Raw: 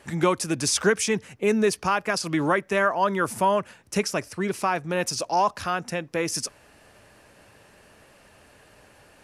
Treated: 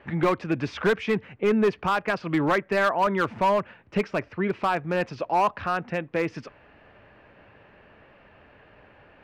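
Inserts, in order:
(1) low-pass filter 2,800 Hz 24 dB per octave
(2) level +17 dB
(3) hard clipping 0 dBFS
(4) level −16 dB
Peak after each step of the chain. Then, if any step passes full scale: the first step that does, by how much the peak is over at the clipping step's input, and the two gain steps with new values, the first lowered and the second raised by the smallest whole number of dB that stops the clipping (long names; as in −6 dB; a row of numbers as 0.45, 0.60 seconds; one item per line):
−8.5, +8.5, 0.0, −16.0 dBFS
step 2, 8.5 dB
step 2 +8 dB, step 4 −7 dB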